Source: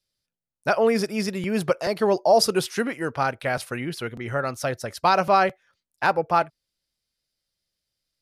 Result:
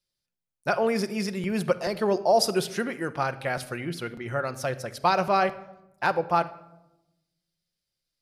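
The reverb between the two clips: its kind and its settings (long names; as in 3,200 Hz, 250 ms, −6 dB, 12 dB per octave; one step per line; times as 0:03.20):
rectangular room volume 3,300 cubic metres, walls furnished, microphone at 0.89 metres
level −3.5 dB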